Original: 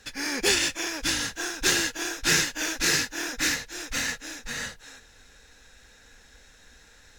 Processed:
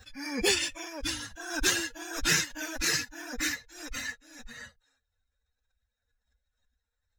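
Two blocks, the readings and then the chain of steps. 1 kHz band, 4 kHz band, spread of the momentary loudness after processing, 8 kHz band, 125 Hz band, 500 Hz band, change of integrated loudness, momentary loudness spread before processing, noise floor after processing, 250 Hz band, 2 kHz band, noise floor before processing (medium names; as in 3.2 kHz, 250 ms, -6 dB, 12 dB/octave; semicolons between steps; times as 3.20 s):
-5.0 dB, -5.0 dB, 20 LU, -5.0 dB, -3.5 dB, -3.0 dB, -4.0 dB, 11 LU, -84 dBFS, -3.5 dB, -5.0 dB, -55 dBFS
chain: expander on every frequency bin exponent 2; swell ahead of each attack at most 83 dB/s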